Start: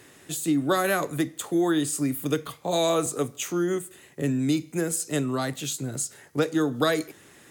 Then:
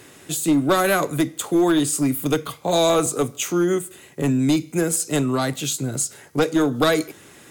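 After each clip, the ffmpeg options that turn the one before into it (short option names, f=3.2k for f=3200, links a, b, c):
-af "aeval=exprs='clip(val(0),-1,0.1)':c=same,bandreject=f=1.8k:w=13,volume=6dB"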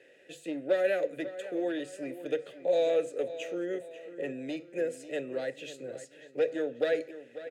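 -filter_complex "[0:a]asplit=3[a][b][c];[a]bandpass=f=530:t=q:w=8,volume=0dB[d];[b]bandpass=f=1.84k:t=q:w=8,volume=-6dB[e];[c]bandpass=f=2.48k:t=q:w=8,volume=-9dB[f];[d][e][f]amix=inputs=3:normalize=0,bandreject=f=50:t=h:w=6,bandreject=f=100:t=h:w=6,bandreject=f=150:t=h:w=6,asplit=2[g][h];[h]adelay=543,lowpass=f=4.1k:p=1,volume=-13.5dB,asplit=2[i][j];[j]adelay=543,lowpass=f=4.1k:p=1,volume=0.46,asplit=2[k][l];[l]adelay=543,lowpass=f=4.1k:p=1,volume=0.46,asplit=2[m][n];[n]adelay=543,lowpass=f=4.1k:p=1,volume=0.46[o];[g][i][k][m][o]amix=inputs=5:normalize=0"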